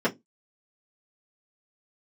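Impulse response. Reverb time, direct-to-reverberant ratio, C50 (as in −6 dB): 0.15 s, −8.5 dB, 22.0 dB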